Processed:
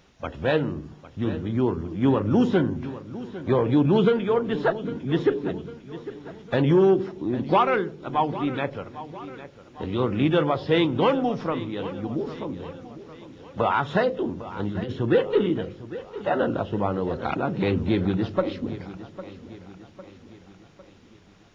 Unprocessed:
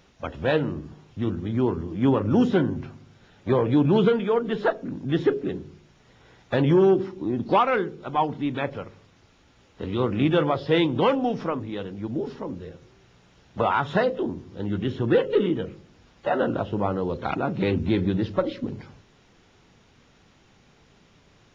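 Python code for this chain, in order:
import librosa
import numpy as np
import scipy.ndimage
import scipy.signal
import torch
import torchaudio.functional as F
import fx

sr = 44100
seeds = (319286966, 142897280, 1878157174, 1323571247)

p1 = fx.over_compress(x, sr, threshold_db=-28.0, ratio=-0.5, at=(14.47, 14.93))
y = p1 + fx.echo_feedback(p1, sr, ms=803, feedback_pct=50, wet_db=-15.0, dry=0)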